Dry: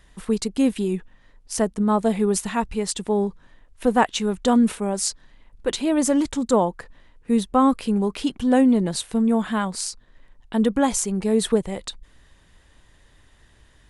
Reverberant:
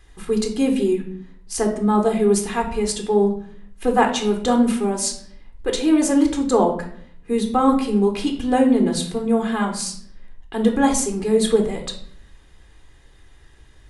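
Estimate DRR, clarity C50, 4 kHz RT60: 3.0 dB, 9.0 dB, 0.45 s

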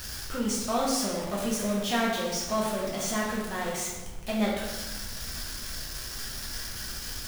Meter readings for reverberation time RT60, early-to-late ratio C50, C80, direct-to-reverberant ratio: 1.2 s, 1.5 dB, 4.0 dB, -5.0 dB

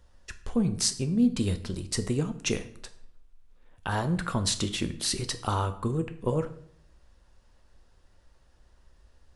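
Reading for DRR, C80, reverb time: 9.0 dB, 17.0 dB, 0.60 s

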